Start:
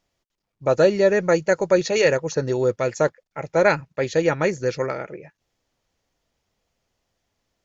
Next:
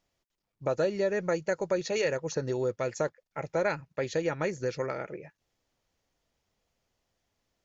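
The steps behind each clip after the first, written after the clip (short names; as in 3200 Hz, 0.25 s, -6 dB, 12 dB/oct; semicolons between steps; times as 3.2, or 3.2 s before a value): compressor 2:1, threshold -26 dBFS, peak gain reduction 8.5 dB; gain -4 dB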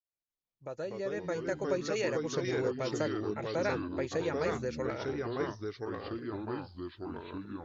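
opening faded in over 1.75 s; echoes that change speed 0.117 s, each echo -3 st, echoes 3; gain -4.5 dB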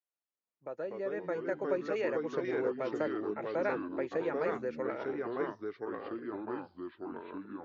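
three-band isolator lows -21 dB, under 190 Hz, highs -20 dB, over 2600 Hz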